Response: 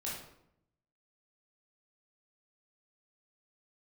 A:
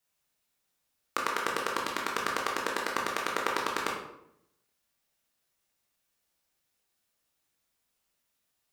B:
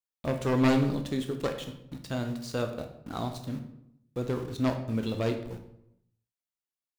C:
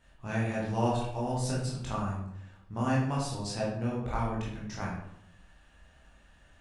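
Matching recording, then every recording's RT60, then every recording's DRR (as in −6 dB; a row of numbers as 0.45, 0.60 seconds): C; 0.75, 0.75, 0.75 seconds; −2.0, 5.0, −6.0 decibels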